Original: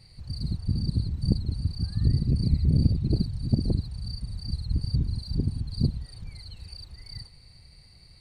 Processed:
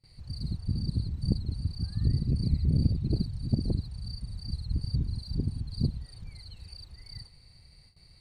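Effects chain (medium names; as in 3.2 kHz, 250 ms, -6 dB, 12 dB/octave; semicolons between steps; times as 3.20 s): gate with hold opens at -43 dBFS; trim -3.5 dB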